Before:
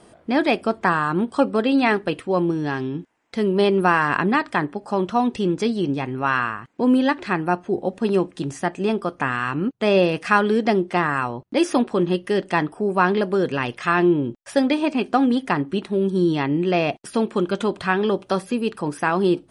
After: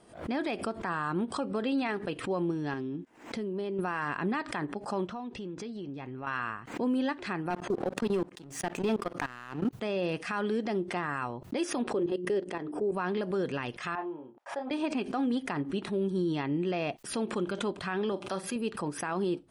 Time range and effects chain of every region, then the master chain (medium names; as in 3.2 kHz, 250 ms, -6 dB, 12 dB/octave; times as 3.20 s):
2.73–3.79 s: peaking EQ 290 Hz +7.5 dB 1.6 oct + compression 4:1, threshold -24 dBFS
5.07–6.27 s: compression 4:1, threshold -28 dBFS + distance through air 75 m
7.50–9.73 s: high-pass 110 Hz 24 dB/octave + level held to a coarse grid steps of 22 dB + waveshaping leveller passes 2
11.90–12.92 s: peaking EQ 420 Hz +11 dB 1.2 oct + hum notches 60/120/180/240/300/360 Hz + level held to a coarse grid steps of 14 dB
13.95–14.71 s: band-pass filter 860 Hz, Q 2.4 + doubling 31 ms -6 dB
18.12–18.56 s: bass shelf 140 Hz -11 dB + band-stop 450 Hz, Q 5.5 + doubling 42 ms -12.5 dB
whole clip: peak limiter -13.5 dBFS; swell ahead of each attack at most 120 dB/s; trim -9 dB